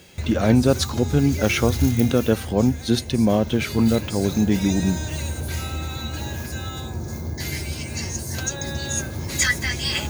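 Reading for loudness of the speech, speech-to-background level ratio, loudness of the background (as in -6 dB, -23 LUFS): -21.0 LUFS, 7.0 dB, -28.0 LUFS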